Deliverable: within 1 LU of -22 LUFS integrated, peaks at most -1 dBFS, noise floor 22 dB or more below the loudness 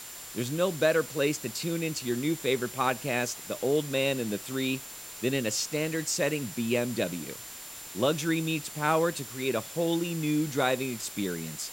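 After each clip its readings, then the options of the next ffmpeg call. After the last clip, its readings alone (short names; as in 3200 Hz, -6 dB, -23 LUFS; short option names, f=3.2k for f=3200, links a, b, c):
steady tone 7200 Hz; tone level -47 dBFS; noise floor -43 dBFS; noise floor target -52 dBFS; loudness -29.5 LUFS; peak -11.5 dBFS; loudness target -22.0 LUFS
-> -af "bandreject=f=7.2k:w=30"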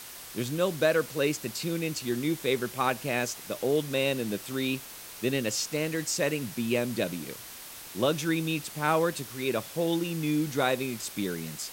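steady tone none; noise floor -44 dBFS; noise floor target -52 dBFS
-> -af "afftdn=nr=8:nf=-44"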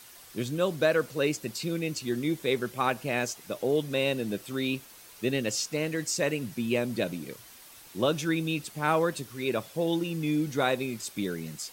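noise floor -51 dBFS; noise floor target -52 dBFS
-> -af "afftdn=nr=6:nf=-51"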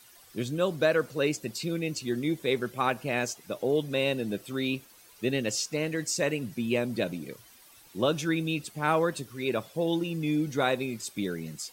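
noise floor -55 dBFS; loudness -29.5 LUFS; peak -12.0 dBFS; loudness target -22.0 LUFS
-> -af "volume=7.5dB"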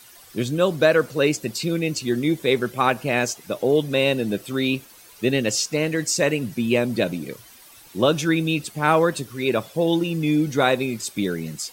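loudness -22.0 LUFS; peak -4.5 dBFS; noise floor -48 dBFS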